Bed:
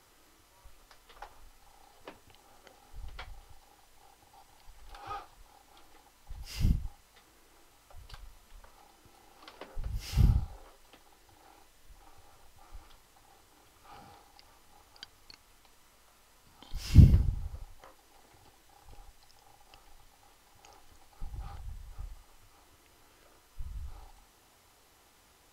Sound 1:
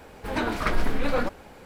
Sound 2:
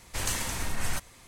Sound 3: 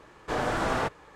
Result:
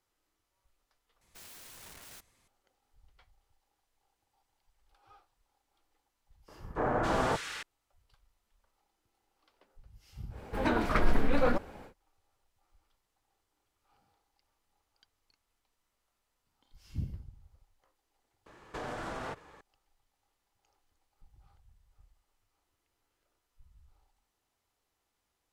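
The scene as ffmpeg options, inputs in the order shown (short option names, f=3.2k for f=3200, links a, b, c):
-filter_complex "[3:a]asplit=2[a][b];[0:a]volume=-19.5dB[c];[2:a]aeval=exprs='(mod(29.9*val(0)+1,2)-1)/29.9':c=same[d];[a]acrossover=split=1800[e][f];[f]adelay=270[g];[e][g]amix=inputs=2:normalize=0[h];[1:a]highshelf=f=2.1k:g=-7[i];[b]acompressor=threshold=-32dB:ratio=6:attack=3.2:release=140:knee=1:detection=peak[j];[c]asplit=2[k][l];[k]atrim=end=1.214[m];[d]atrim=end=1.27,asetpts=PTS-STARTPTS,volume=-17dB[n];[l]atrim=start=2.476[o];[h]atrim=end=1.15,asetpts=PTS-STARTPTS,volume=-1dB,afade=t=in:d=0.004:c=hsin,afade=t=out:st=1.146:d=0.004:c=hsin,adelay=6480[p];[i]atrim=end=1.65,asetpts=PTS-STARTPTS,volume=-1dB,afade=t=in:d=0.1,afade=t=out:st=1.55:d=0.1,adelay=10290[q];[j]atrim=end=1.15,asetpts=PTS-STARTPTS,volume=-3.5dB,afade=t=in:d=0.004:c=hsin,afade=t=out:st=1.146:d=0.004:c=hsin,adelay=18460[r];[m][n]acrossfade=d=0.004:c1=hsin:c2=hsin[s];[s][o]acrossfade=d=0.004:c1=hsin:c2=hsin[t];[t][p][q][r]amix=inputs=4:normalize=0"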